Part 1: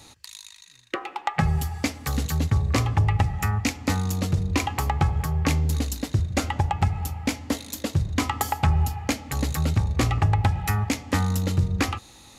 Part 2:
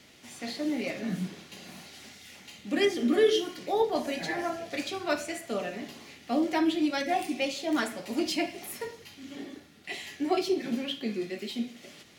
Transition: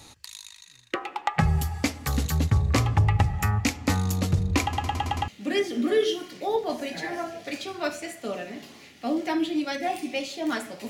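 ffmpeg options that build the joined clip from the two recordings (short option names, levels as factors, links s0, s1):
-filter_complex "[0:a]apad=whole_dur=10.89,atrim=end=10.89,asplit=6[s0][s1][s2][s3][s4][s5];[s0]atrim=end=4.732[s6];[s1]atrim=start=4.618:end=4.732[s7];[s2]atrim=start=4.618:end=4.732[s8];[s3]atrim=start=4.618:end=4.732[s9];[s4]atrim=start=4.618:end=4.732[s10];[s5]atrim=start=4.618:end=4.732[s11];[1:a]atrim=start=2.538:end=8.15[s12];[s6][s7]acrossfade=d=0.004:c1=hsin:c2=hsin[s13];[s13][s8]acrossfade=d=0.004:c1=hsin:c2=hsin[s14];[s14][s9]acrossfade=d=0.004:c1=hsin:c2=hsin[s15];[s15][s10]acrossfade=d=0.004:c1=hsin:c2=hsin[s16];[s16][s11]acrossfade=d=0.004:c1=hsin:c2=hsin[s17];[s17][s12]acrossfade=d=0.004:c1=hsin:c2=hsin"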